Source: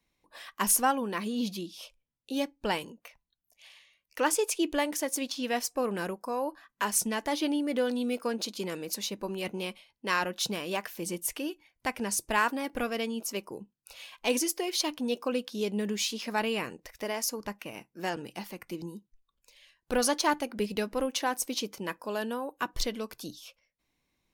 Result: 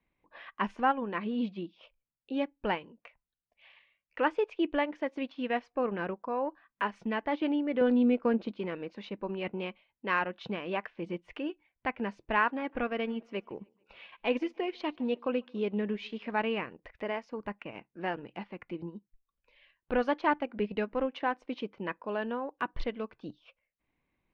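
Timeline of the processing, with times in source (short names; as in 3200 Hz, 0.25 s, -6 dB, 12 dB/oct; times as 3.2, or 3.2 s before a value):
7.81–8.58 low shelf 370 Hz +10 dB
12.43–16.31 feedback echo 0.147 s, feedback 54%, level -23.5 dB
whole clip: LPF 2700 Hz 24 dB/oct; transient shaper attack -1 dB, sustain -7 dB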